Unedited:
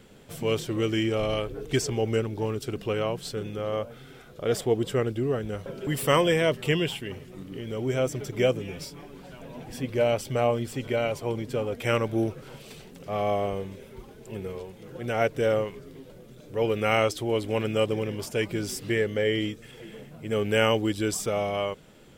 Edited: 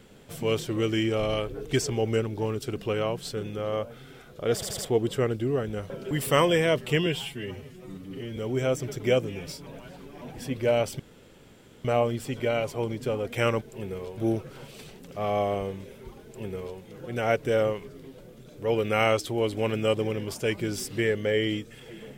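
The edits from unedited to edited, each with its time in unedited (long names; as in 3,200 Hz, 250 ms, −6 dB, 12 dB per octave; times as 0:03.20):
0:04.54: stutter 0.08 s, 4 plays
0:06.82–0:07.69: time-stretch 1.5×
0:08.99–0:09.54: reverse
0:10.32: splice in room tone 0.85 s
0:14.15–0:14.71: duplicate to 0:12.09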